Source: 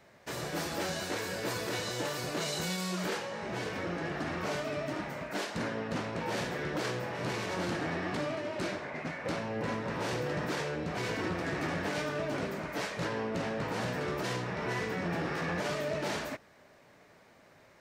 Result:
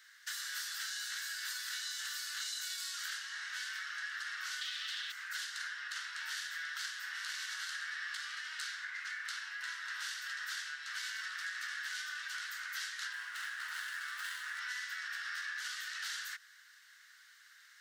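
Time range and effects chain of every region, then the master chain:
4.61–5.12 minimum comb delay 6.7 ms + bell 3400 Hz +14.5 dB 1.3 oct
13.12–14.6 median filter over 9 samples + HPF 150 Hz 6 dB/oct + low shelf 490 Hz +8.5 dB
whole clip: elliptic high-pass 1500 Hz, stop band 60 dB; bell 2400 Hz -14.5 dB 0.32 oct; compressor, threshold -46 dBFS; gain +8 dB

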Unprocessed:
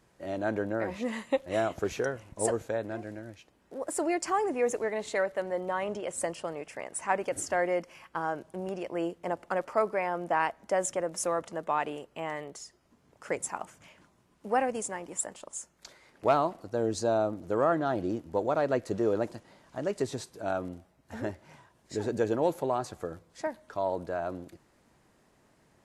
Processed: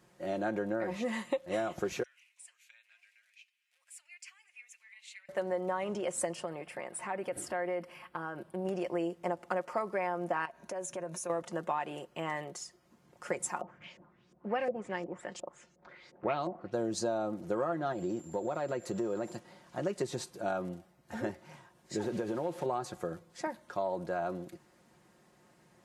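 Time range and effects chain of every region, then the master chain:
2.03–5.29 compressor 3:1, threshold -37 dBFS + ladder high-pass 2200 Hz, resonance 65%
6.44–8.65 bell 6400 Hz -13.5 dB 0.53 oct + compressor 2.5:1, threshold -36 dBFS
10.45–11.3 ripple EQ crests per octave 1.5, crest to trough 7 dB + compressor 4:1, threshold -39 dBFS
13.61–16.73 bell 970 Hz -4.5 dB 1.2 oct + LFO low-pass saw up 2.8 Hz 500–7100 Hz
17.92–19.36 whine 7300 Hz -56 dBFS + compressor 2.5:1, threshold -32 dBFS
22.03–22.66 delta modulation 64 kbps, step -42 dBFS + high shelf 5300 Hz -10 dB + compressor, threshold -29 dBFS
whole clip: HPF 72 Hz; comb 5.6 ms, depth 53%; compressor 6:1, threshold -29 dBFS

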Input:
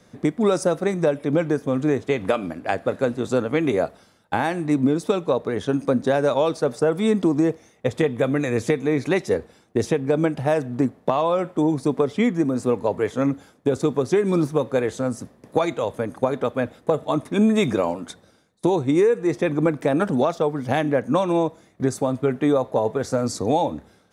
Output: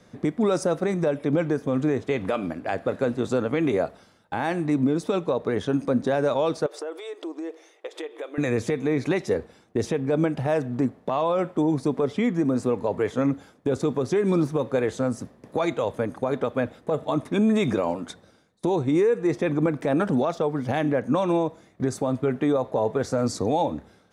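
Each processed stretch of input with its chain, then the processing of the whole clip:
6.66–8.38 bell 3200 Hz +4 dB 0.84 oct + compressor 4:1, threshold -31 dBFS + brick-wall FIR high-pass 290 Hz
whole clip: high shelf 8000 Hz -7.5 dB; limiter -14 dBFS

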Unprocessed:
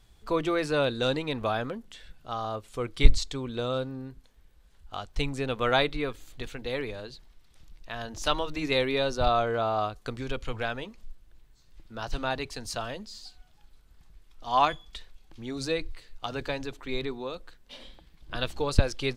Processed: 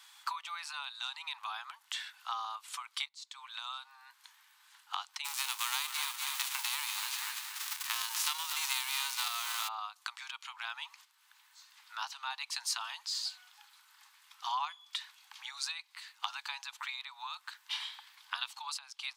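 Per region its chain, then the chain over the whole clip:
5.24–9.67 spectral whitening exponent 0.3 + feedback echo 0.241 s, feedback 38%, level -11 dB
whole clip: dynamic EQ 1700 Hz, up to -7 dB, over -48 dBFS, Q 2; compressor 10:1, threshold -40 dBFS; steep high-pass 860 Hz 72 dB/oct; gain +10.5 dB

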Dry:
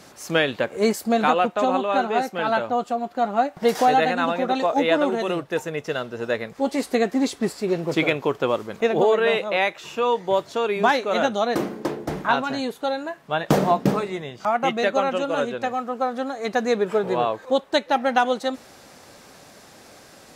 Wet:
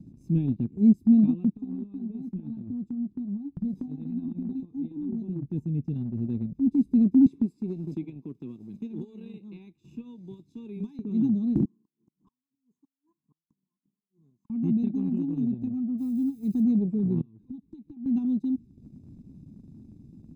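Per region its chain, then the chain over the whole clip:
1.56–5.46 bell 2800 Hz -6 dB 0.21 oct + compressor 3:1, threshold -30 dBFS + doubler 21 ms -11.5 dB
7.26–10.99 HPF 1100 Hz 6 dB/oct + three-band squash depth 100%
11.65–14.5 flipped gate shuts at -17 dBFS, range -33 dB + double band-pass 2700 Hz, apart 2.7 oct + overloaded stage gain 28.5 dB
15.98–16.63 switching spikes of -19.5 dBFS + high shelf 8900 Hz +7.5 dB
17.21–18.06 notch 540 Hz, Q 6.1 + compressor 16:1, threshold -35 dBFS
whole clip: inverse Chebyshev low-pass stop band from 530 Hz, stop band 40 dB; comb 0.8 ms, depth 86%; transient shaper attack -3 dB, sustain -7 dB; gain +5.5 dB

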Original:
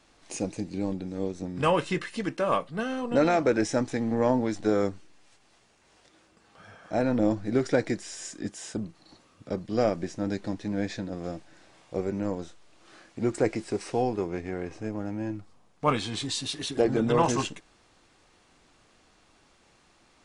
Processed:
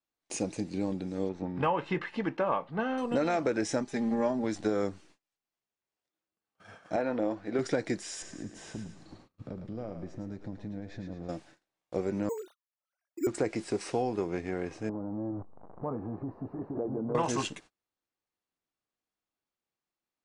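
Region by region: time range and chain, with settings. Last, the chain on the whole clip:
1.29–2.98 LPF 2600 Hz + bell 870 Hz +10 dB 0.31 oct
3.8–4.44 comb 5 ms, depth 78% + upward expander, over -34 dBFS
6.96–7.59 LPF 9200 Hz + tone controls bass -13 dB, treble -11 dB
8.22–11.29 RIAA curve playback + compressor 4:1, threshold -37 dBFS + thinning echo 0.109 s, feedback 52%, high-pass 600 Hz, level -5.5 dB
12.29–13.27 sine-wave speech + careless resampling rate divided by 6×, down none, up hold
14.89–17.15 zero-crossing step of -34 dBFS + inverse Chebyshev low-pass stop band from 3200 Hz, stop band 60 dB + compressor 3:1, threshold -32 dBFS
whole clip: gate -50 dBFS, range -32 dB; low shelf 62 Hz -10 dB; compressor 5:1, threshold -25 dBFS

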